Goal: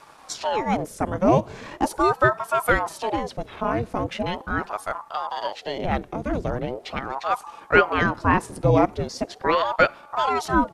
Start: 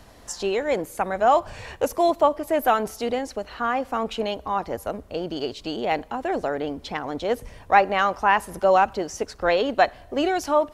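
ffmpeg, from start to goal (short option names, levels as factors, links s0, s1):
-af "afreqshift=-220,asetrate=39289,aresample=44100,atempo=1.12246,aeval=exprs='val(0)*sin(2*PI*600*n/s+600*0.7/0.4*sin(2*PI*0.4*n/s))':c=same,volume=1.41"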